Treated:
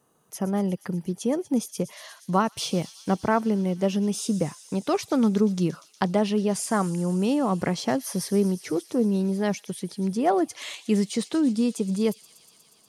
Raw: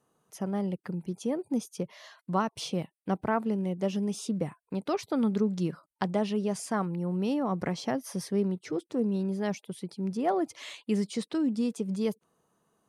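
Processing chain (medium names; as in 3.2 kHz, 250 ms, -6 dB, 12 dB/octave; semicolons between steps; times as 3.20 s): treble shelf 9.3 kHz +8 dB; feedback echo behind a high-pass 120 ms, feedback 83%, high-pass 4.2 kHz, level -12 dB; trim +5.5 dB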